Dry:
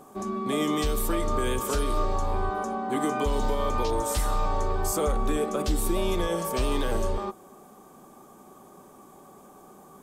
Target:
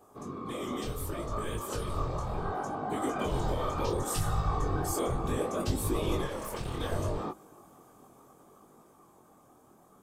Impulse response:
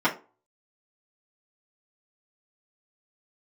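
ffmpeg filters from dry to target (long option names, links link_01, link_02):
-filter_complex "[0:a]asettb=1/sr,asplit=3[link_01][link_02][link_03];[link_01]atrim=end=3.904[link_04];[link_02]atrim=start=3.9:end=5.07,asetpts=PTS-STARTPTS,afade=type=in:duration=0.004:curve=qsin,afade=type=out:start_time=1.166:duration=0.004:curve=qsin,aecho=1:1:2.7:0.82,atrim=end_sample=51597[link_05];[link_03]atrim=start=5.066[link_06];[link_04][link_05]acrossfade=duration=0.004:curve1=hsin:curve2=qsin[link_07];[link_07][link_06]acrossfade=duration=0.004:curve1=qsin:curve2=hsin,alimiter=limit=-17.5dB:level=0:latency=1:release=194,dynaudnorm=framelen=360:gausssize=13:maxgain=5.5dB,asettb=1/sr,asplit=3[link_08][link_09][link_10];[link_08]atrim=end=6.264[link_11];[link_09]atrim=start=6.26:end=6.8,asetpts=PTS-STARTPTS,afade=type=in:duration=0.004:curve=qsin,afade=type=out:start_time=0.536:duration=0.004:curve=qsin,aeval=exprs='(tanh(15.8*val(0)+0.6)-tanh(0.6))/15.8':channel_layout=same[link_12];[link_10]atrim=start=6.796[link_13];[link_11][link_12]acrossfade=duration=0.004:curve1=hsin:curve2=qsin[link_14];[link_14][link_13]acrossfade=duration=0.004:curve1=qsin:curve2=hsin,afftfilt=real='hypot(re,im)*cos(2*PI*random(0))':imag='hypot(re,im)*sin(2*PI*random(1))':win_size=512:overlap=0.75,flanger=delay=19:depth=5.3:speed=0.68"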